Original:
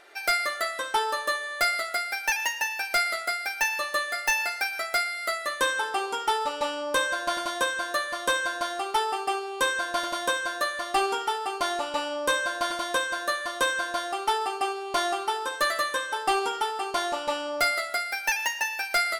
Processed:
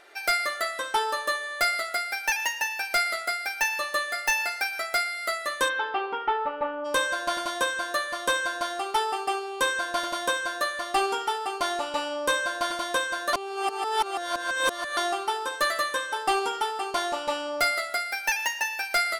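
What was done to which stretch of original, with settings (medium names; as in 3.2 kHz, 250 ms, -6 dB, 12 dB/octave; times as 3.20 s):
5.68–6.84 s: low-pass 4 kHz -> 1.7 kHz 24 dB/octave
13.33–14.97 s: reverse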